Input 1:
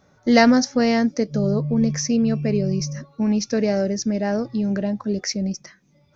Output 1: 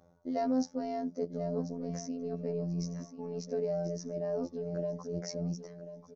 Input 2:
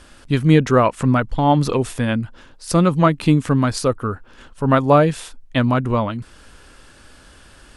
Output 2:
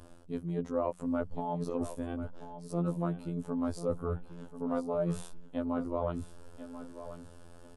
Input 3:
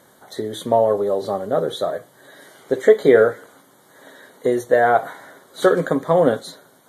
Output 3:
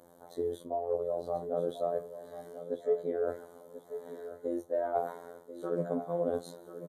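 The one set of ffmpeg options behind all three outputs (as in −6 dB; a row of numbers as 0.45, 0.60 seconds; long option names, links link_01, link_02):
-af "crystalizer=i=1.5:c=0,firequalizer=gain_entry='entry(380,0);entry(540,3);entry(1800,-16)':delay=0.05:min_phase=1,areverse,acompressor=threshold=-25dB:ratio=6,areverse,afftfilt=real='hypot(re,im)*cos(PI*b)':imag='0':win_size=2048:overlap=0.75,bandreject=frequency=60:width_type=h:width=6,bandreject=frequency=120:width_type=h:width=6,bandreject=frequency=180:width_type=h:width=6,aecho=1:1:1038|2076|3114:0.251|0.0728|0.0211,volume=-1.5dB"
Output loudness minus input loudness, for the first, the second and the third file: −15.0, −17.5, −16.5 LU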